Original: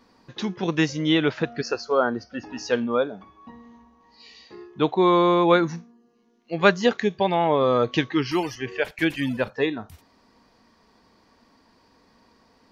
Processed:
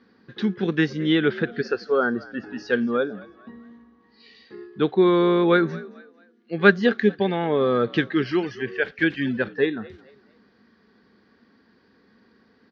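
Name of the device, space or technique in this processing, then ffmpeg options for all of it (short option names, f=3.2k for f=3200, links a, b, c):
frequency-shifting delay pedal into a guitar cabinet: -filter_complex "[0:a]asplit=4[a][b][c][d];[b]adelay=223,afreqshift=55,volume=-21dB[e];[c]adelay=446,afreqshift=110,volume=-30.1dB[f];[d]adelay=669,afreqshift=165,volume=-39.2dB[g];[a][e][f][g]amix=inputs=4:normalize=0,highpass=79,equalizer=f=210:t=q:w=4:g=7,equalizer=f=400:t=q:w=4:g=6,equalizer=f=640:t=q:w=4:g=-7,equalizer=f=960:t=q:w=4:g=-10,equalizer=f=1.6k:t=q:w=4:g=8,equalizer=f=2.6k:t=q:w=4:g=-4,lowpass=f=4.3k:w=0.5412,lowpass=f=4.3k:w=1.3066,volume=-1dB"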